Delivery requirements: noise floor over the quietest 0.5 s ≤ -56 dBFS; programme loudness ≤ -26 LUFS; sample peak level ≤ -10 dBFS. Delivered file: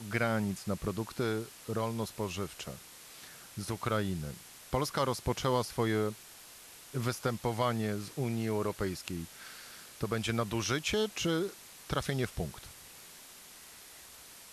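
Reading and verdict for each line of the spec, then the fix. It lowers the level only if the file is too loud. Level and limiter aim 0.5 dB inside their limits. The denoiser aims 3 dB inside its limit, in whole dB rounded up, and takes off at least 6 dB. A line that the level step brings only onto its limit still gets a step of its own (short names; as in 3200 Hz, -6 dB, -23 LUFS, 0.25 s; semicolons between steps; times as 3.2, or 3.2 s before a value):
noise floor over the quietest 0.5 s -52 dBFS: fail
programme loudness -34.5 LUFS: OK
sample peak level -17.5 dBFS: OK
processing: denoiser 7 dB, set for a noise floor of -52 dBFS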